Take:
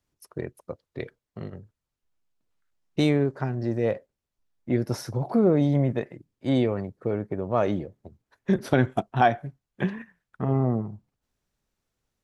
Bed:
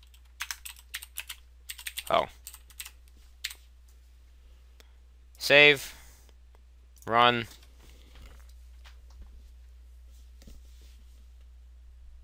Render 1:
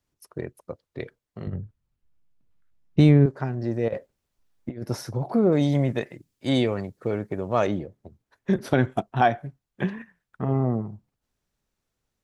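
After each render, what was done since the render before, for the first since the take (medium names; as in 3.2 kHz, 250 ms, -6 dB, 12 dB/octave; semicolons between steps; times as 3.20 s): 1.47–3.26 s: tone controls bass +12 dB, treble -6 dB; 3.88–4.83 s: compressor with a negative ratio -30 dBFS, ratio -0.5; 5.52–7.67 s: treble shelf 2.4 kHz +12 dB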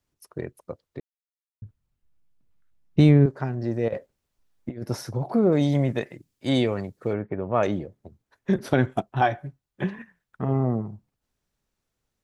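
1.00–1.62 s: mute; 7.13–7.63 s: low-pass 2.6 kHz 24 dB/octave; 9.02–9.99 s: comb of notches 230 Hz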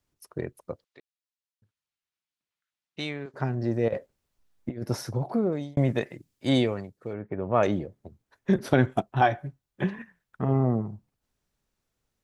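0.84–3.34 s: band-pass filter 3.6 kHz, Q 0.69; 5.13–5.77 s: fade out linear; 6.54–7.50 s: dip -8.5 dB, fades 0.36 s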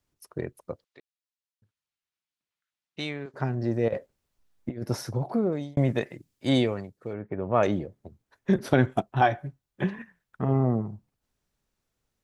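no audible change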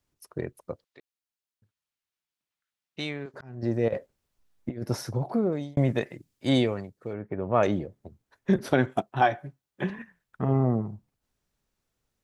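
3.06–3.63 s: slow attack 448 ms; 8.72–9.90 s: high-pass 190 Hz 6 dB/octave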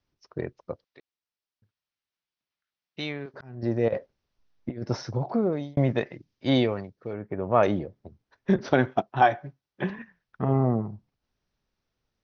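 steep low-pass 6 kHz 72 dB/octave; dynamic bell 880 Hz, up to +3 dB, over -37 dBFS, Q 0.78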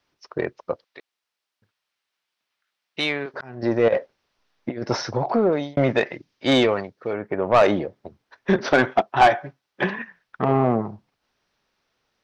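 overdrive pedal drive 19 dB, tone 4.2 kHz, clips at -5.5 dBFS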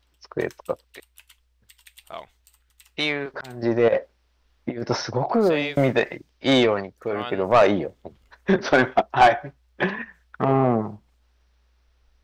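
add bed -12 dB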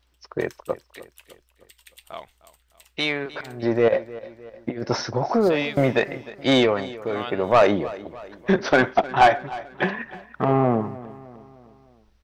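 feedback delay 306 ms, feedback 50%, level -18 dB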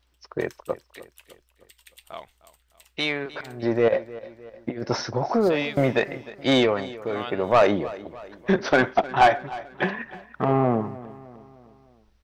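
trim -1.5 dB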